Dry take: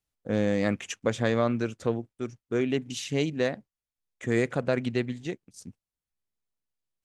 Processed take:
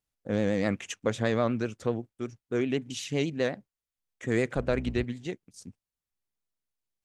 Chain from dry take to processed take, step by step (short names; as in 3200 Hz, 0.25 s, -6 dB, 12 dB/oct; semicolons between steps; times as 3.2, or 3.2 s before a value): 4.54–5.04 octaver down 2 oct, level -4 dB; vibrato 8 Hz 68 cents; gain -1.5 dB